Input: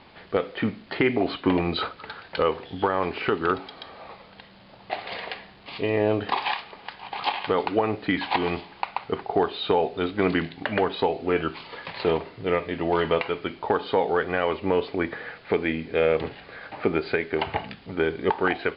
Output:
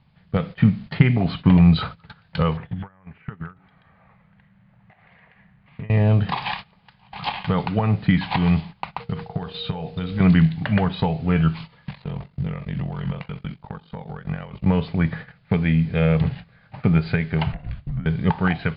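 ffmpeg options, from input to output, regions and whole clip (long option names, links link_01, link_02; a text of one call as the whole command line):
ffmpeg -i in.wav -filter_complex "[0:a]asettb=1/sr,asplit=3[link_01][link_02][link_03];[link_01]atrim=end=2.574[link_04];[link_02]atrim=start=2.57:end=5.9,asetpts=PTS-STARTPTS,afade=type=in:duration=0.004:curve=qsin,afade=type=out:start_time=3.326:duration=0.004:curve=qsin,acompressor=threshold=-36dB:ratio=10:attack=3.2:release=140:knee=1:detection=peak,lowpass=frequency=1900:width_type=q:width=2.2[link_05];[link_03]atrim=start=5.896[link_06];[link_04][link_05]acrossfade=duration=0.004:curve1=hsin:curve2=qsin[link_07];[link_07][link_06]acrossfade=duration=0.004:curve1=qsin:curve2=hsin,asettb=1/sr,asplit=3[link_08][link_09][link_10];[link_08]atrim=end=9.004[link_11];[link_09]atrim=start=9:end=10.2,asetpts=PTS-STARTPTS,afade=type=in:duration=0.004:curve=qsin,afade=type=out:start_time=1.196:duration=0.004:curve=qsin,highshelf=frequency=3000:gain=7.5,acompressor=threshold=-28dB:ratio=6:attack=3.2:release=140:knee=1:detection=peak,aeval=exprs='val(0)+0.0224*sin(2*PI*470*n/s)':channel_layout=same[link_12];[link_10]atrim=start=10.196[link_13];[link_11][link_12]acrossfade=duration=0.004:curve1=hsin:curve2=qsin[link_14];[link_14][link_13]acrossfade=duration=0.004:curve1=qsin:curve2=hsin,asettb=1/sr,asplit=3[link_15][link_16][link_17];[link_15]atrim=end=11.854[link_18];[link_16]atrim=start=11.85:end=14.66,asetpts=PTS-STARTPTS,afade=type=in:duration=0.004:curve=qsin,afade=type=out:start_time=2.806:duration=0.004:curve=qsin,acompressor=threshold=-27dB:ratio=8:attack=3.2:release=140:knee=1:detection=peak,aeval=exprs='val(0)*sin(2*PI*23*n/s)':channel_layout=same[link_19];[link_17]atrim=start=14.656[link_20];[link_18][link_19]acrossfade=duration=0.004:curve1=hsin:curve2=qsin[link_21];[link_21][link_20]acrossfade=duration=0.004:curve1=qsin:curve2=hsin,asettb=1/sr,asplit=3[link_22][link_23][link_24];[link_22]atrim=end=17.524[link_25];[link_23]atrim=start=17.52:end=18.06,asetpts=PTS-STARTPTS,afade=type=in:duration=0.004:curve=qsin,afade=type=out:start_time=0.536:duration=0.004:curve=qsin,aemphasis=mode=reproduction:type=75fm,acompressor=threshold=-36dB:ratio=16:attack=3.2:release=140:knee=1:detection=peak,afreqshift=-140[link_26];[link_24]atrim=start=18.056[link_27];[link_25][link_26]acrossfade=duration=0.004:curve1=hsin:curve2=qsin[link_28];[link_28][link_27]acrossfade=duration=0.004:curve1=qsin:curve2=hsin,lowshelf=frequency=230:width_type=q:width=3:gain=13,agate=range=-16dB:threshold=-32dB:ratio=16:detection=peak" out.wav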